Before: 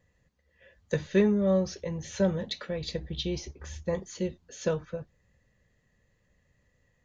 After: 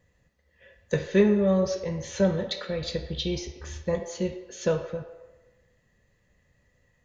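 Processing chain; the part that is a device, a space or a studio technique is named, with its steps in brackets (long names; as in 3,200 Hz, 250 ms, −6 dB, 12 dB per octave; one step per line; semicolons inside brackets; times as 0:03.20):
filtered reverb send (on a send: high-pass filter 360 Hz 24 dB per octave + low-pass filter 6,100 Hz + convolution reverb RT60 1.2 s, pre-delay 9 ms, DRR 5.5 dB)
on the sum: level +2.5 dB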